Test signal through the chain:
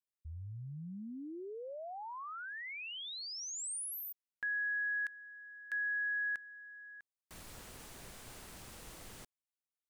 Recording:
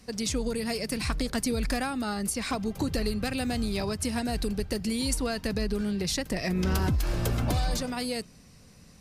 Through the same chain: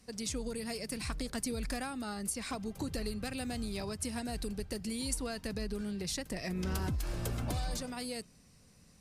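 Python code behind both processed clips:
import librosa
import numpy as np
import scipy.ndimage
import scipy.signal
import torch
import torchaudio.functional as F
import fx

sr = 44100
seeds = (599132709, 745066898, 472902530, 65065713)

y = fx.peak_eq(x, sr, hz=8900.0, db=4.5, octaves=0.79)
y = F.gain(torch.from_numpy(y), -8.5).numpy()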